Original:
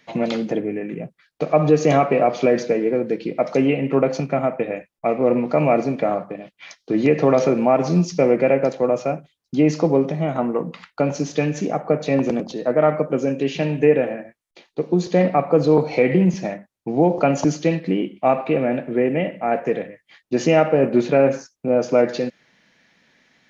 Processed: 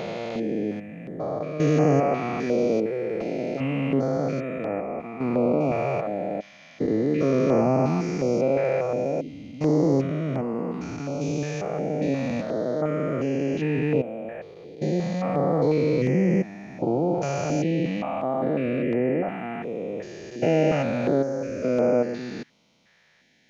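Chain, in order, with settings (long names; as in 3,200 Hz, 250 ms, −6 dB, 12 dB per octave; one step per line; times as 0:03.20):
spectrum averaged block by block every 400 ms
notch on a step sequencer 2.8 Hz 260–3,700 Hz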